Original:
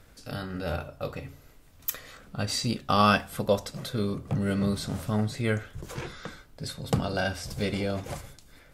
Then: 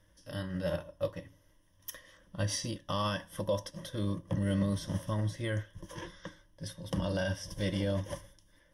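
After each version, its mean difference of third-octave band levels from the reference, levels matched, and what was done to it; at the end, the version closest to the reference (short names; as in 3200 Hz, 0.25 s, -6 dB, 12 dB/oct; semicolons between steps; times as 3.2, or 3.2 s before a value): 4.5 dB: ripple EQ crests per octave 1.2, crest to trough 15 dB; limiter -18.5 dBFS, peak gain reduction 10.5 dB; upward expander 1.5:1, over -44 dBFS; gain -3 dB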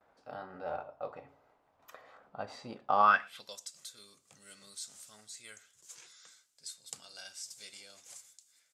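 12.5 dB: gate with hold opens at -47 dBFS; band-pass sweep 810 Hz -> 7300 Hz, 2.99–3.57; outdoor echo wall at 20 m, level -27 dB; gain +1 dB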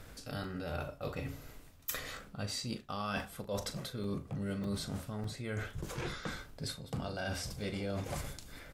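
6.0 dB: reverse; compressor 10:1, threshold -39 dBFS, peak gain reduction 22 dB; reverse; doubler 40 ms -12 dB; crackling interface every 0.60 s, samples 128, zero, from 0.44; gain +3.5 dB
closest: first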